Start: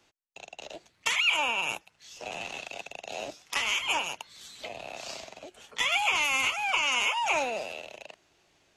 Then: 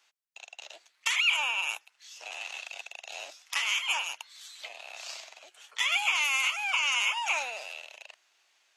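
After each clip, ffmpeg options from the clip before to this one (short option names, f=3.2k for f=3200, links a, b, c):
-af "highpass=1.1k"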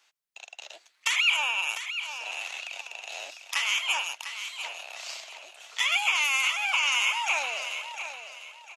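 -af "aecho=1:1:700|1400|2100:0.316|0.0949|0.0285,volume=2dB"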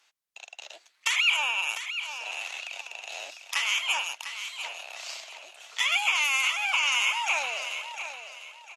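-ar 48000 -c:a libvorbis -b:a 192k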